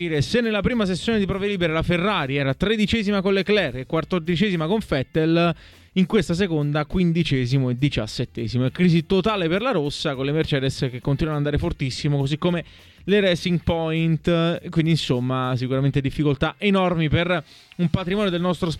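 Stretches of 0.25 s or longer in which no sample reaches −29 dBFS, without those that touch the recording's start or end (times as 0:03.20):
0:05.53–0:05.96
0:12.61–0:13.08
0:17.40–0:17.72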